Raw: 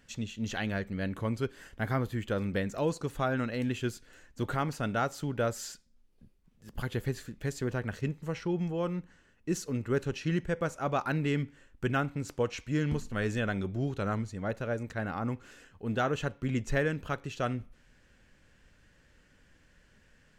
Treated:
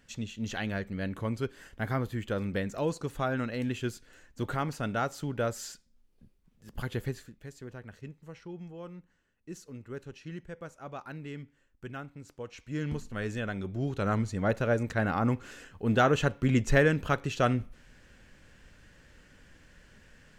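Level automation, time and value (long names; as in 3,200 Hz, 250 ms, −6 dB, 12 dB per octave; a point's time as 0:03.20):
0:07.05 −0.5 dB
0:07.46 −11.5 dB
0:12.42 −11.5 dB
0:12.84 −3 dB
0:13.58 −3 dB
0:14.34 +6 dB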